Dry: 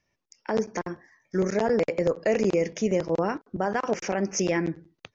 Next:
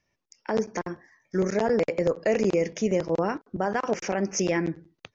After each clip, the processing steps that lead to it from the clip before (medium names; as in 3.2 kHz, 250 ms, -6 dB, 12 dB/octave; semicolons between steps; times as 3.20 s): no audible change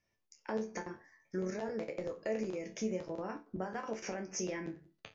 compression, threshold -29 dBFS, peak gain reduction 10 dB; chord resonator D2 major, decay 0.25 s; trim +4 dB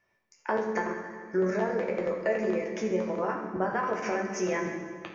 FFT filter 100 Hz 0 dB, 1.3 kHz +13 dB, 5.5 kHz -1 dB; reverberation RT60 1.8 s, pre-delay 4 ms, DRR 1.5 dB